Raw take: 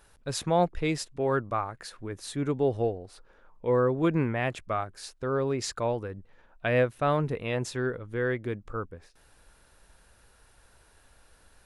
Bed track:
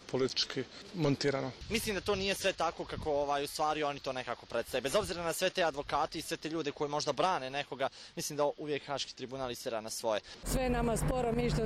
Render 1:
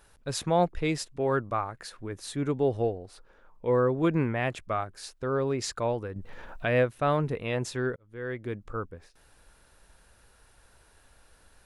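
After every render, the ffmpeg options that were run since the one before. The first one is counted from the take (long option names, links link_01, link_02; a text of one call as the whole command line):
ffmpeg -i in.wav -filter_complex "[0:a]asettb=1/sr,asplit=3[link_01][link_02][link_03];[link_01]atrim=end=6.164[link_04];[link_02]atrim=start=6.16:end=6.84,asetpts=PTS-STARTPTS,afade=type=in:duration=0.004:curve=qsin,afade=type=out:start_time=0.676:duration=0.004:curve=qsin,acompressor=mode=upward:threshold=-27dB:ratio=2.5:attack=3.2:release=140:knee=2.83:detection=peak[link_05];[link_03]atrim=start=6.836[link_06];[link_04][link_05]acrossfade=duration=0.004:curve1=hsin:curve2=qsin[link_07];[link_07][link_06]acrossfade=duration=0.004:curve1=qsin:curve2=hsin,asplit=2[link_08][link_09];[link_08]atrim=end=7.96,asetpts=PTS-STARTPTS,afade=type=out:start_time=7.956:duration=0.004:curve=hsin[link_10];[link_09]atrim=start=7.96,asetpts=PTS-STARTPTS,afade=type=in:duration=0.66[link_11];[link_10][link_11]concat=n=2:v=0:a=1" out.wav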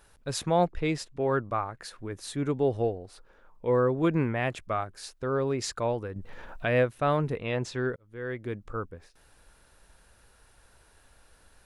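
ffmpeg -i in.wav -filter_complex "[0:a]asettb=1/sr,asplit=3[link_01][link_02][link_03];[link_01]atrim=end=0.674[link_04];[link_02]atrim=start=0.67:end=1.83,asetpts=PTS-STARTPTS,afade=type=in:duration=0.004:curve=qsin,afade=type=out:start_time=1.156:duration=0.004:curve=qsin,highshelf=frequency=6800:gain=-8[link_05];[link_03]atrim=start=1.826[link_06];[link_04][link_05]acrossfade=duration=0.004:curve1=hsin:curve2=qsin[link_07];[link_07][link_06]acrossfade=duration=0.004:curve1=qsin:curve2=hsin,asettb=1/sr,asplit=3[link_08][link_09][link_10];[link_08]atrim=end=7.374[link_11];[link_09]atrim=start=7.37:end=7.87,asetpts=PTS-STARTPTS,afade=type=in:duration=0.004:curve=qsin,afade=type=out:start_time=0.496:duration=0.004:curve=qsin,lowpass=6200[link_12];[link_10]atrim=start=7.866[link_13];[link_11][link_12]acrossfade=duration=0.004:curve1=hsin:curve2=qsin[link_14];[link_14][link_13]acrossfade=duration=0.004:curve1=qsin:curve2=hsin" out.wav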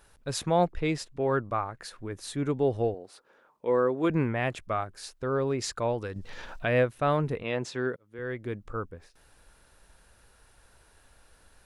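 ffmpeg -i in.wav -filter_complex "[0:a]asettb=1/sr,asplit=3[link_01][link_02][link_03];[link_01]atrim=end=2.944[link_04];[link_02]atrim=start=2.94:end=4.1,asetpts=PTS-STARTPTS,afade=type=in:duration=0.004:curve=qsin,afade=type=out:start_time=1.156:duration=0.004:curve=qsin,highpass=230[link_05];[link_03]atrim=start=4.096[link_06];[link_04][link_05]acrossfade=duration=0.004:curve1=hsin:curve2=qsin[link_07];[link_07][link_06]acrossfade=duration=0.004:curve1=qsin:curve2=hsin,asettb=1/sr,asplit=3[link_08][link_09][link_10];[link_08]atrim=end=6.014[link_11];[link_09]atrim=start=6.01:end=6.59,asetpts=PTS-STARTPTS,afade=type=in:duration=0.004:curve=qsin,afade=type=out:start_time=0.576:duration=0.004:curve=qsin,equalizer=frequency=5100:width=0.6:gain=13.5[link_12];[link_10]atrim=start=6.586[link_13];[link_11][link_12]acrossfade=duration=0.004:curve1=hsin:curve2=qsin[link_14];[link_14][link_13]acrossfade=duration=0.004:curve1=qsin:curve2=hsin,asettb=1/sr,asplit=3[link_15][link_16][link_17];[link_15]atrim=end=7.434[link_18];[link_16]atrim=start=7.43:end=8.19,asetpts=PTS-STARTPTS,afade=type=in:duration=0.004:curve=qsin,afade=type=out:start_time=0.756:duration=0.004:curve=qsin,highpass=150[link_19];[link_17]atrim=start=8.186[link_20];[link_18][link_19]acrossfade=duration=0.004:curve1=hsin:curve2=qsin[link_21];[link_21][link_20]acrossfade=duration=0.004:curve1=qsin:curve2=hsin" out.wav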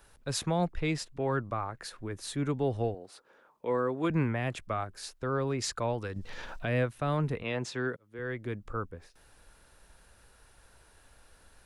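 ffmpeg -i in.wav -filter_complex "[0:a]acrossover=split=320|560|4100[link_01][link_02][link_03][link_04];[link_02]acompressor=threshold=-44dB:ratio=6[link_05];[link_03]alimiter=level_in=1dB:limit=-24dB:level=0:latency=1:release=37,volume=-1dB[link_06];[link_01][link_05][link_06][link_04]amix=inputs=4:normalize=0" out.wav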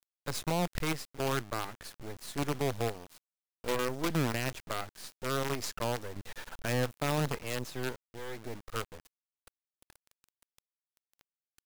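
ffmpeg -i in.wav -af "acrusher=bits=5:dc=4:mix=0:aa=0.000001,asoftclip=type=tanh:threshold=-20.5dB" out.wav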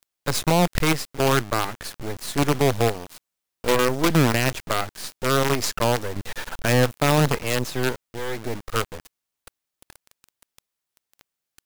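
ffmpeg -i in.wav -af "volume=12dB" out.wav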